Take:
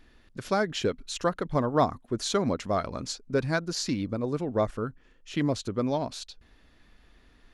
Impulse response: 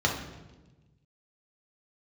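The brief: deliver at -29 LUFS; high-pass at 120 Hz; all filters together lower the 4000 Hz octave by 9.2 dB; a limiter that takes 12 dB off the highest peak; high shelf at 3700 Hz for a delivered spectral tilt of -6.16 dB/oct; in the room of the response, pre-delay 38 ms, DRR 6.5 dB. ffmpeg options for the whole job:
-filter_complex "[0:a]highpass=120,highshelf=f=3.7k:g=-4.5,equalizer=f=4k:t=o:g=-8.5,alimiter=limit=-22.5dB:level=0:latency=1,asplit=2[a][b];[1:a]atrim=start_sample=2205,adelay=38[c];[b][c]afir=irnorm=-1:irlink=0,volume=-18.5dB[d];[a][d]amix=inputs=2:normalize=0,volume=4dB"

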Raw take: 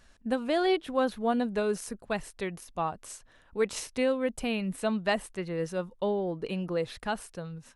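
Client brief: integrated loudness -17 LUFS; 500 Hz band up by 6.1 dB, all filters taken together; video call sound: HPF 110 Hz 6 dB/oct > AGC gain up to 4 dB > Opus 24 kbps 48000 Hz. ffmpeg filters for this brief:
-af "highpass=f=110:p=1,equalizer=f=500:t=o:g=7.5,dynaudnorm=m=4dB,volume=10dB" -ar 48000 -c:a libopus -b:a 24k

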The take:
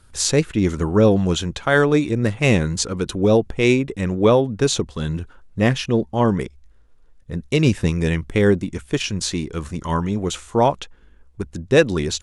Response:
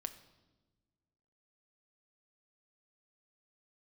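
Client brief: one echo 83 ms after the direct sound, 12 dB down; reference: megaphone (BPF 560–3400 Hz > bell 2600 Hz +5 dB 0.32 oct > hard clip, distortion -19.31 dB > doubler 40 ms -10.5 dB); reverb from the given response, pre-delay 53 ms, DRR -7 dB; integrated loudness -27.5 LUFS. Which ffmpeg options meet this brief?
-filter_complex "[0:a]aecho=1:1:83:0.251,asplit=2[a][b];[1:a]atrim=start_sample=2205,adelay=53[c];[b][c]afir=irnorm=-1:irlink=0,volume=9dB[d];[a][d]amix=inputs=2:normalize=0,highpass=560,lowpass=3.4k,equalizer=f=2.6k:t=o:w=0.32:g=5,asoftclip=type=hard:threshold=-4dB,asplit=2[e][f];[f]adelay=40,volume=-10.5dB[g];[e][g]amix=inputs=2:normalize=0,volume=-10.5dB"

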